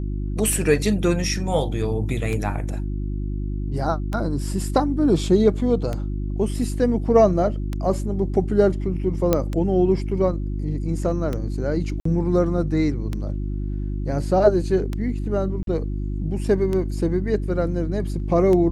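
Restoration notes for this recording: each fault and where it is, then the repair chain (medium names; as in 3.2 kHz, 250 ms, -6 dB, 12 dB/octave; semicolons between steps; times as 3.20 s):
hum 50 Hz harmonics 7 -26 dBFS
tick 33 1/3 rpm -14 dBFS
9.33 s: pop -5 dBFS
12.00–12.05 s: dropout 54 ms
15.63–15.67 s: dropout 42 ms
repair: de-click; de-hum 50 Hz, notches 7; interpolate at 12.00 s, 54 ms; interpolate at 15.63 s, 42 ms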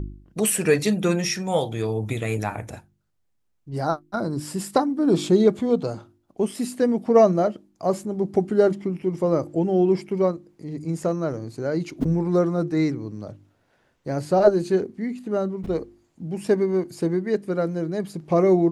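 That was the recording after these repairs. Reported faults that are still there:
nothing left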